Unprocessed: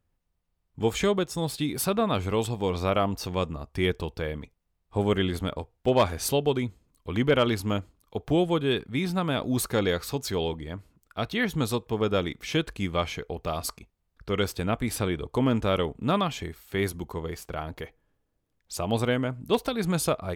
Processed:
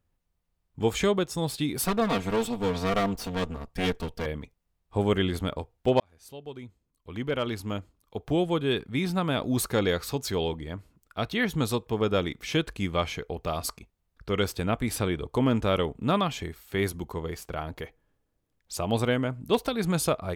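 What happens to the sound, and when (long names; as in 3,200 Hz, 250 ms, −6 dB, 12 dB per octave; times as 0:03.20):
0:01.84–0:04.26: lower of the sound and its delayed copy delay 4.3 ms
0:06.00–0:09.00: fade in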